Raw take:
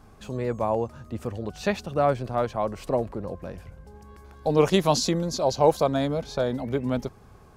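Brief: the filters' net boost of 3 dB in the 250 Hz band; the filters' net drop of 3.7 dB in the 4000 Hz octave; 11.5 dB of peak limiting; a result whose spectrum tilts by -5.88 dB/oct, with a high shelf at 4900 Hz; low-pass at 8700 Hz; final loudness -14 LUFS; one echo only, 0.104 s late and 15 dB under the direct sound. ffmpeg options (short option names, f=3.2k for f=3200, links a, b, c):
-af "lowpass=8.7k,equalizer=f=250:t=o:g=4,equalizer=f=4k:t=o:g=-7,highshelf=f=4.9k:g=5,alimiter=limit=-16.5dB:level=0:latency=1,aecho=1:1:104:0.178,volume=14.5dB"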